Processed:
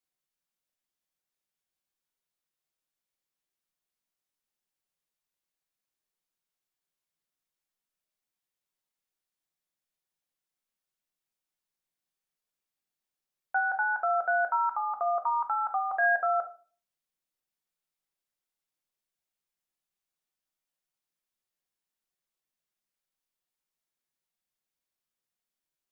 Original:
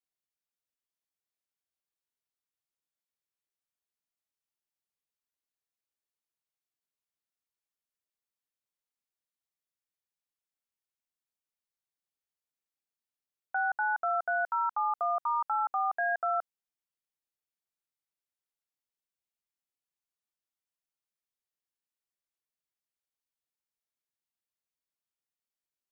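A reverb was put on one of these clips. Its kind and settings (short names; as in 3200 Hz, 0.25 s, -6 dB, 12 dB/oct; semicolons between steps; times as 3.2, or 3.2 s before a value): shoebox room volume 250 m³, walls furnished, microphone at 1 m; gain +2 dB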